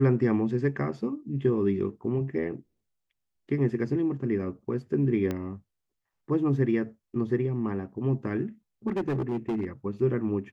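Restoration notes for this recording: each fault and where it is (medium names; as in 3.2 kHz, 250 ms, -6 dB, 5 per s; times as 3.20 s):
5.31 s: pop -18 dBFS
8.87–9.67 s: clipped -24.5 dBFS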